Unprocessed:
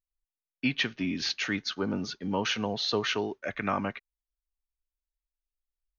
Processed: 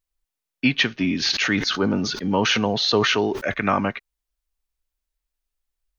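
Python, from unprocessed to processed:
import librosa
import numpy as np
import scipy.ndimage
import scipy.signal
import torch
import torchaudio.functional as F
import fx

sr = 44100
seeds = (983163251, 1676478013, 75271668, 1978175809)

y = fx.sustainer(x, sr, db_per_s=39.0, at=(1.22, 3.52), fade=0.02)
y = y * 10.0 ** (8.5 / 20.0)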